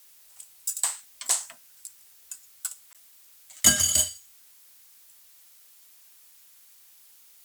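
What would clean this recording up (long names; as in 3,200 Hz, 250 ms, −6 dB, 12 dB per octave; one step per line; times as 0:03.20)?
repair the gap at 0:02.93, 17 ms
noise reduction from a noise print 20 dB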